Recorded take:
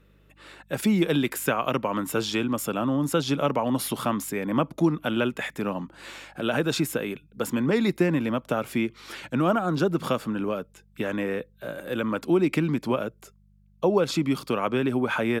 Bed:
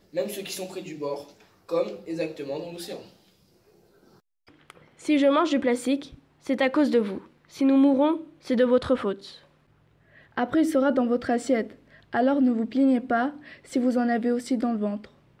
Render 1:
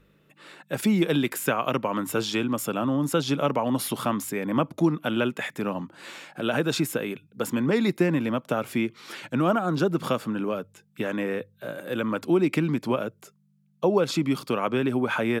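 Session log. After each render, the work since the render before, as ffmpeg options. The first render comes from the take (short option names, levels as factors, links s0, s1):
-af "bandreject=f=50:t=h:w=4,bandreject=f=100:t=h:w=4"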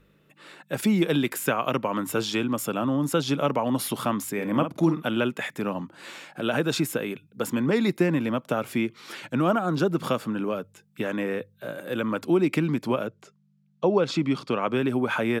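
-filter_complex "[0:a]asettb=1/sr,asplit=3[s0][s1][s2];[s0]atrim=end=4.334[s3];[s1]atrim=start=4.33:end=5.05,asetpts=PTS-STARTPTS,afade=t=in:d=0.004:c=qsin,afade=t=out:st=0.716:d=0.004:c=qsin,asplit=2[s4][s5];[s5]adelay=49,volume=0.355[s6];[s4][s6]amix=inputs=2:normalize=0,atrim=end_sample=31752[s7];[s2]atrim=start=5.046[s8];[s3][s7]acrossfade=d=0.004:c1=hsin:c2=qsin[s9];[s9][s8]acrossfade=d=0.004:c1=qsin:c2=hsin,asettb=1/sr,asplit=3[s10][s11][s12];[s10]atrim=end=13.074[s13];[s11]atrim=start=13.07:end=14.68,asetpts=PTS-STARTPTS,afade=t=in:d=0.004:c=qsin,afade=t=out:st=1.606:d=0.004:c=qsin,lowpass=5700[s14];[s12]atrim=start=14.676[s15];[s13][s14]acrossfade=d=0.004:c1=hsin:c2=qsin[s16];[s16][s15]acrossfade=d=0.004:c1=qsin:c2=hsin"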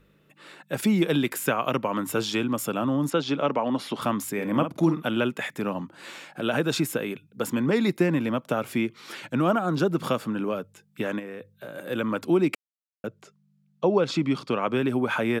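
-filter_complex "[0:a]asettb=1/sr,asplit=3[s0][s1][s2];[s0]atrim=end=3.104[s3];[s1]atrim=start=3.1:end=4.02,asetpts=PTS-STARTPTS,afade=t=in:d=0.004:c=qsin,afade=t=out:st=0.916:d=0.004:c=qsin,highpass=180,lowpass=4600[s4];[s2]atrim=start=4.016[s5];[s3][s4]acrossfade=d=0.004:c1=hsin:c2=qsin[s6];[s6][s5]acrossfade=d=0.004:c1=qsin:c2=hsin,asplit=3[s7][s8][s9];[s7]afade=t=out:st=11.18:d=0.02[s10];[s8]acompressor=threshold=0.02:ratio=6:attack=3.2:release=140:knee=1:detection=peak,afade=t=in:st=11.18:d=0.02,afade=t=out:st=11.74:d=0.02[s11];[s9]afade=t=in:st=11.74:d=0.02[s12];[s10][s11][s12]amix=inputs=3:normalize=0,asplit=3[s13][s14][s15];[s13]atrim=end=12.55,asetpts=PTS-STARTPTS,afade=t=out:st=12.546:d=0.004:c=hsin[s16];[s14]atrim=start=12.55:end=13.04,asetpts=PTS-STARTPTS,volume=0[s17];[s15]atrim=start=13.04,asetpts=PTS-STARTPTS,afade=t=in:d=0.004:c=hsin[s18];[s16][s17][s18]concat=n=3:v=0:a=1"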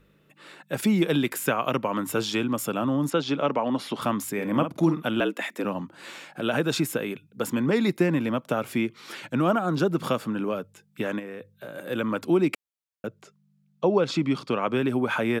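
-filter_complex "[0:a]asettb=1/sr,asplit=3[s0][s1][s2];[s0]atrim=end=5.204[s3];[s1]atrim=start=5.2:end=5.65,asetpts=PTS-STARTPTS,afade=t=in:d=0.004:c=qsin,afade=t=out:st=0.446:d=0.004:c=qsin,afreqshift=72[s4];[s2]atrim=start=5.646[s5];[s3][s4]acrossfade=d=0.004:c1=hsin:c2=qsin[s6];[s6][s5]acrossfade=d=0.004:c1=qsin:c2=hsin"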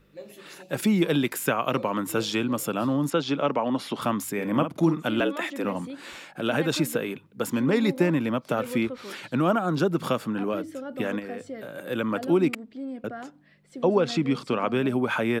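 -filter_complex "[1:a]volume=0.188[s0];[0:a][s0]amix=inputs=2:normalize=0"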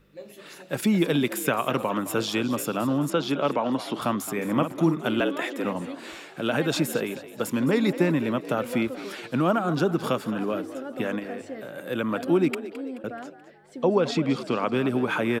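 -filter_complex "[0:a]asplit=5[s0][s1][s2][s3][s4];[s1]adelay=215,afreqshift=59,volume=0.188[s5];[s2]adelay=430,afreqshift=118,volume=0.0902[s6];[s3]adelay=645,afreqshift=177,volume=0.0432[s7];[s4]adelay=860,afreqshift=236,volume=0.0209[s8];[s0][s5][s6][s7][s8]amix=inputs=5:normalize=0"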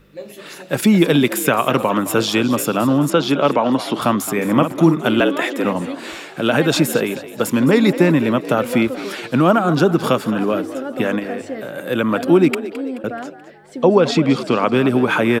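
-af "volume=2.82,alimiter=limit=0.891:level=0:latency=1"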